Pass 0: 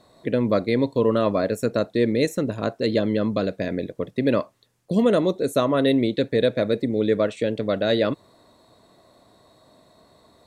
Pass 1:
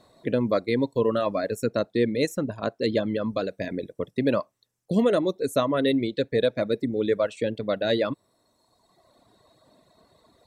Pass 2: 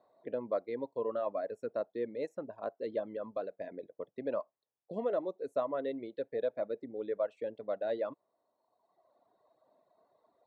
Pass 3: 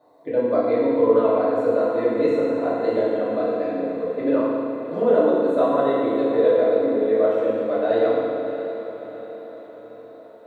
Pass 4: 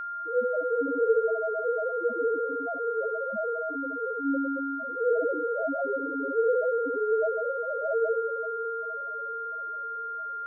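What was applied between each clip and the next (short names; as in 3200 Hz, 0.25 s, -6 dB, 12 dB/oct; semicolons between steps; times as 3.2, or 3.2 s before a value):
reverb removal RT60 1.4 s; gain -1.5 dB
band-pass 710 Hz, Q 1.5; gain -7 dB
diffused feedback echo 0.645 s, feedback 53%, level -11 dB; FDN reverb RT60 2.2 s, low-frequency decay 1.3×, high-frequency decay 0.9×, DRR -10 dB; gain +5.5 dB
loudest bins only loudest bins 1; whine 1400 Hz -32 dBFS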